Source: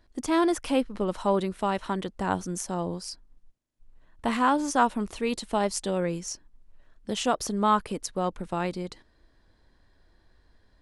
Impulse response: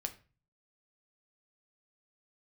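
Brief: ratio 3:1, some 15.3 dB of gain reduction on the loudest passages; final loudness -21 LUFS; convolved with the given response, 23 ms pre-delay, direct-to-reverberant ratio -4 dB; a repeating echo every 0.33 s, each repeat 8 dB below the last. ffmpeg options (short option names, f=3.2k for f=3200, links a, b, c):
-filter_complex "[0:a]acompressor=threshold=-38dB:ratio=3,aecho=1:1:330|660|990|1320|1650:0.398|0.159|0.0637|0.0255|0.0102,asplit=2[a][b];[1:a]atrim=start_sample=2205,adelay=23[c];[b][c]afir=irnorm=-1:irlink=0,volume=4.5dB[d];[a][d]amix=inputs=2:normalize=0,volume=13dB"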